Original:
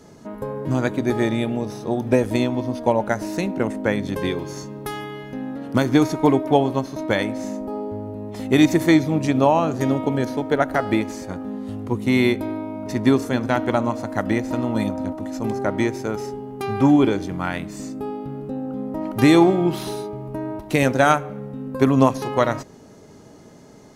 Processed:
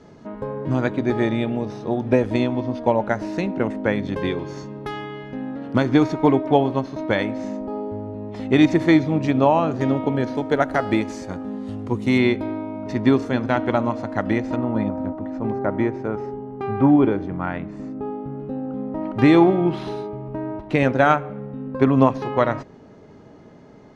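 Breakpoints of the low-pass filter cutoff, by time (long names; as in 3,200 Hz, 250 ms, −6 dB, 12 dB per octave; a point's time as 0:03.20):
3,800 Hz
from 0:10.35 7,100 Hz
from 0:12.18 3,900 Hz
from 0:14.56 1,700 Hz
from 0:18.40 2,900 Hz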